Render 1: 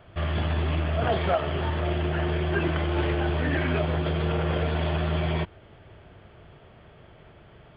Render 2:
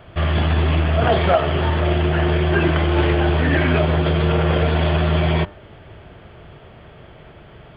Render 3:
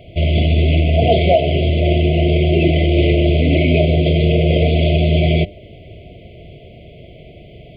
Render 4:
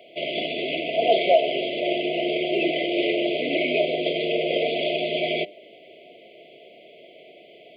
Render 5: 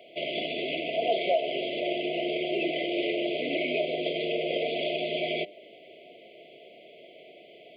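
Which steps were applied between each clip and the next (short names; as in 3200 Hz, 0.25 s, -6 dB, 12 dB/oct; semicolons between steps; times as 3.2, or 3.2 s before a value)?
de-hum 99.77 Hz, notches 18; gain +8.5 dB
FFT band-reject 730–2000 Hz; gain +4 dB
Bessel high-pass 450 Hz, order 4; gain -2.5 dB
compressor 1.5:1, threshold -28 dBFS, peak gain reduction 6 dB; gain -2.5 dB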